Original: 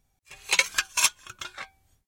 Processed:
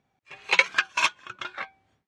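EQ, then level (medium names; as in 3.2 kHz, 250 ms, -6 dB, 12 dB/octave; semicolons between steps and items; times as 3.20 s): band-pass 170–2600 Hz; +5.5 dB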